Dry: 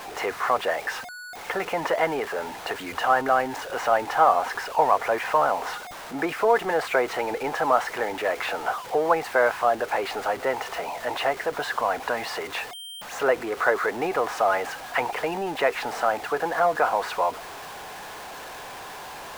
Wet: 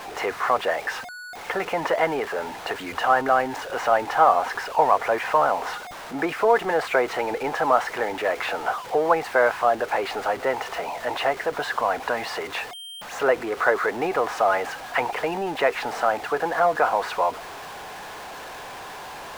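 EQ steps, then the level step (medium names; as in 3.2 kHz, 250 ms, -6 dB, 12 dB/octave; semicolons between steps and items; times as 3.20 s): treble shelf 6.9 kHz -4.5 dB; +1.5 dB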